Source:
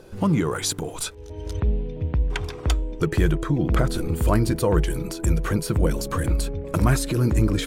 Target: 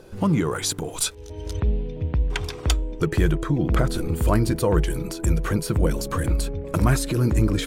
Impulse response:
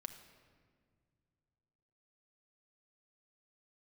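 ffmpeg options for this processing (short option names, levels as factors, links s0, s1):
-filter_complex "[0:a]asplit=3[s0][s1][s2];[s0]afade=t=out:st=0.92:d=0.02[s3];[s1]adynamicequalizer=threshold=0.00631:dfrequency=2400:dqfactor=0.7:tfrequency=2400:tqfactor=0.7:attack=5:release=100:ratio=0.375:range=3:mode=boostabove:tftype=highshelf,afade=t=in:st=0.92:d=0.02,afade=t=out:st=2.75:d=0.02[s4];[s2]afade=t=in:st=2.75:d=0.02[s5];[s3][s4][s5]amix=inputs=3:normalize=0"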